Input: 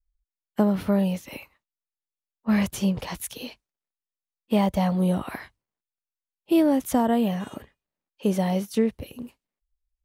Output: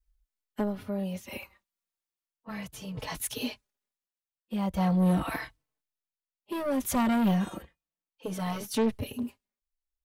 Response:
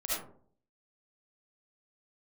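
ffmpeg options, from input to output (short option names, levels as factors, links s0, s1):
-filter_complex "[0:a]tremolo=f=0.56:d=0.83,asoftclip=type=tanh:threshold=0.0473,asplit=2[s0][s1];[s1]adelay=4.1,afreqshift=-0.36[s2];[s0][s2]amix=inputs=2:normalize=1,volume=2.24"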